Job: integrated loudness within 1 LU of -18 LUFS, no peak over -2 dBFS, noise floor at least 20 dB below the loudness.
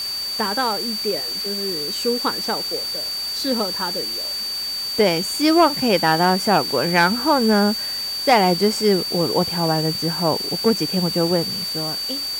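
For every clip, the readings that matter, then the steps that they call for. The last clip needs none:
steady tone 4.6 kHz; tone level -24 dBFS; noise floor -27 dBFS; noise floor target -40 dBFS; loudness -19.5 LUFS; peak level -5.5 dBFS; loudness target -18.0 LUFS
-> band-stop 4.6 kHz, Q 30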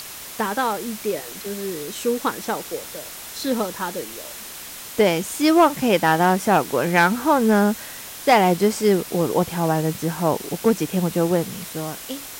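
steady tone not found; noise floor -37 dBFS; noise floor target -41 dBFS
-> noise reduction 6 dB, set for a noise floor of -37 dBFS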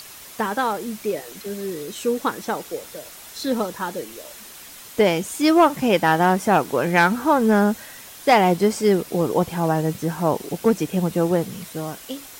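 noise floor -41 dBFS; loudness -21.0 LUFS; peak level -6.5 dBFS; loudness target -18.0 LUFS
-> trim +3 dB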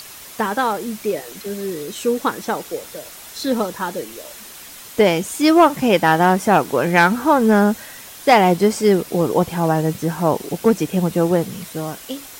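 loudness -18.0 LUFS; peak level -3.5 dBFS; noise floor -38 dBFS

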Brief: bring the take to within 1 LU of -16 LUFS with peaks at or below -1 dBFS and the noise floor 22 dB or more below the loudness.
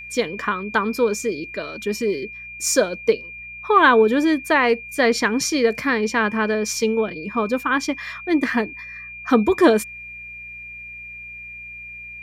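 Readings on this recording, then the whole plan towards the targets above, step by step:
hum 60 Hz; highest harmonic 180 Hz; hum level -49 dBFS; steady tone 2.4 kHz; tone level -34 dBFS; loudness -20.0 LUFS; peak level -3.5 dBFS; loudness target -16.0 LUFS
-> de-hum 60 Hz, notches 3; band-stop 2.4 kHz, Q 30; trim +4 dB; peak limiter -1 dBFS

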